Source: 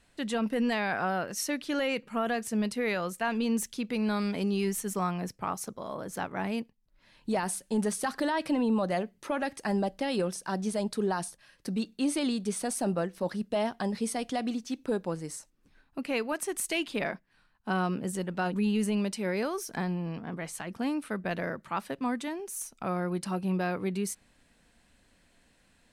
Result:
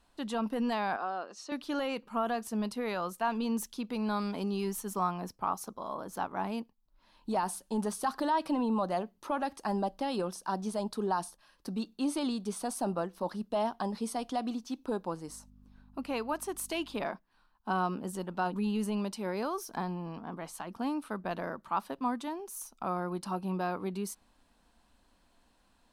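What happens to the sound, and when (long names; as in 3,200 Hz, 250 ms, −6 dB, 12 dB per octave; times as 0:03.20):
0:00.96–0:01.52: loudspeaker in its box 410–6,200 Hz, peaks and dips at 610 Hz −4 dB, 920 Hz −8 dB, 1,500 Hz −5 dB, 2,100 Hz −8 dB, 3,200 Hz −5 dB, 5,700 Hz −8 dB
0:15.26–0:17.03: hum with harmonics 50 Hz, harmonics 5, −54 dBFS −2 dB per octave
whole clip: graphic EQ with 10 bands 125 Hz −11 dB, 500 Hz −5 dB, 1,000 Hz +7 dB, 2,000 Hz −11 dB, 8,000 Hz −7 dB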